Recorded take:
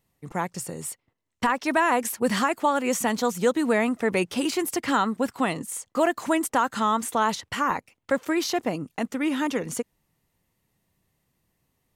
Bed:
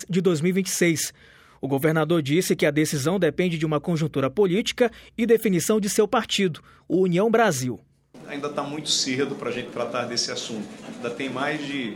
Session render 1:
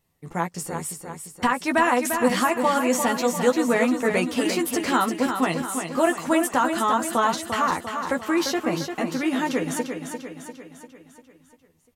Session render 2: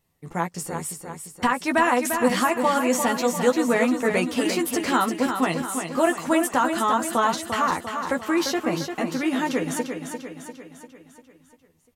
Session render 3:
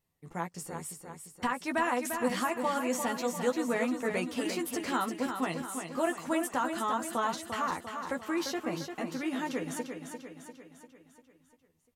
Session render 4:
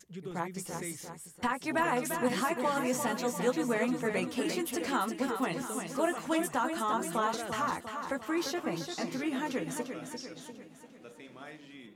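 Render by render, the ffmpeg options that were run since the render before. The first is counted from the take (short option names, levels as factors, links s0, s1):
-filter_complex "[0:a]asplit=2[s0][s1];[s1]adelay=12,volume=0.562[s2];[s0][s2]amix=inputs=2:normalize=0,aecho=1:1:347|694|1041|1388|1735|2082:0.447|0.237|0.125|0.0665|0.0352|0.0187"
-af anull
-af "volume=0.335"
-filter_complex "[1:a]volume=0.0841[s0];[0:a][s0]amix=inputs=2:normalize=0"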